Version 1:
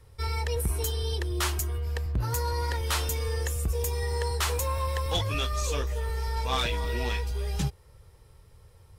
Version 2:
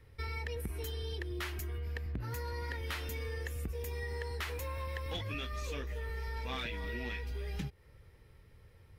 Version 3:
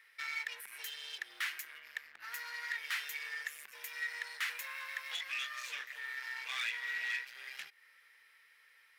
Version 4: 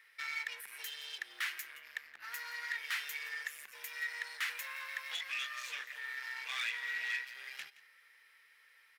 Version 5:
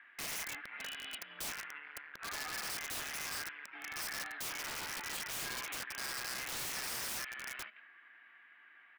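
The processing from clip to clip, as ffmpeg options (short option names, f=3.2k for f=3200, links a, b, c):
-af "equalizer=f=250:t=o:w=1:g=8,equalizer=f=1k:t=o:w=1:g=-4,equalizer=f=2k:t=o:w=1:g=9,equalizer=f=8k:t=o:w=1:g=-9,acompressor=threshold=-30dB:ratio=6,volume=-5.5dB"
-af "asoftclip=type=hard:threshold=-38dB,highpass=f=1.8k:t=q:w=2.3,volume=3dB"
-af "aecho=1:1:171:0.126"
-af "highpass=f=350:t=q:w=0.5412,highpass=f=350:t=q:w=1.307,lowpass=f=3.1k:t=q:w=0.5176,lowpass=f=3.1k:t=q:w=0.7071,lowpass=f=3.1k:t=q:w=1.932,afreqshift=-180,aeval=exprs='(mod(94.4*val(0)+1,2)-1)/94.4':c=same,volume=4.5dB"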